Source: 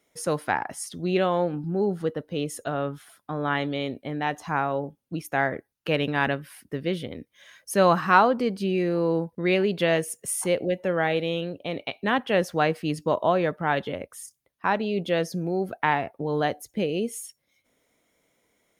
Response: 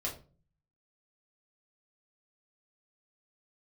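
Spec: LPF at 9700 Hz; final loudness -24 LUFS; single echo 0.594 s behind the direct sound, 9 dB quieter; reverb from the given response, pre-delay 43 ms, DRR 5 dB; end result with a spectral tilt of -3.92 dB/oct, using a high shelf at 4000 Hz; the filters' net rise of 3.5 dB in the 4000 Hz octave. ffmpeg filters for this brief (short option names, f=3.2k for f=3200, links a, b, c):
-filter_complex "[0:a]lowpass=9.7k,highshelf=f=4k:g=-3.5,equalizer=f=4k:t=o:g=7,aecho=1:1:594:0.355,asplit=2[a][b];[1:a]atrim=start_sample=2205,adelay=43[c];[b][c]afir=irnorm=-1:irlink=0,volume=-7.5dB[d];[a][d]amix=inputs=2:normalize=0,volume=0.5dB"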